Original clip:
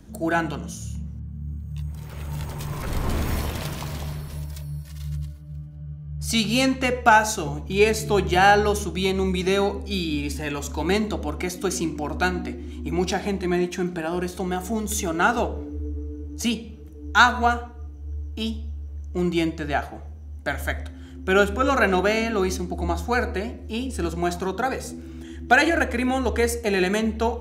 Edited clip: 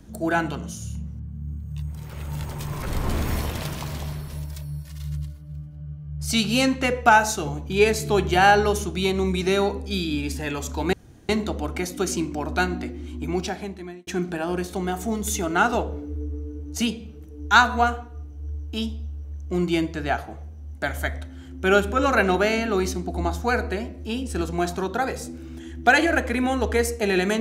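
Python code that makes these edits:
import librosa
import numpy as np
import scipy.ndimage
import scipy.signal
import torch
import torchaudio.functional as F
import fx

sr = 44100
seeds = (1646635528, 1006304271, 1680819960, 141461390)

y = fx.edit(x, sr, fx.insert_room_tone(at_s=10.93, length_s=0.36),
    fx.fade_out_span(start_s=12.79, length_s=0.92), tone=tone)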